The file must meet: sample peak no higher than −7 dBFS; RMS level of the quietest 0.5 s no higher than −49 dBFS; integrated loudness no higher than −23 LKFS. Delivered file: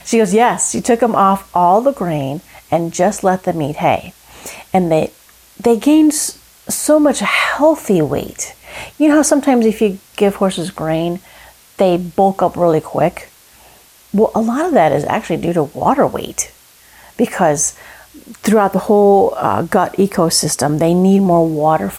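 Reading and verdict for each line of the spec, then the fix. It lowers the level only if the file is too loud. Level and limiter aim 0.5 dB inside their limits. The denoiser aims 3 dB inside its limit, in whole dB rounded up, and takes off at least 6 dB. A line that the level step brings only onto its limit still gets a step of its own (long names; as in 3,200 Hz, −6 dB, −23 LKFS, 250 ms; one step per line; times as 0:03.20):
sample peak −2.0 dBFS: out of spec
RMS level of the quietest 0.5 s −45 dBFS: out of spec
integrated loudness −14.5 LKFS: out of spec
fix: level −9 dB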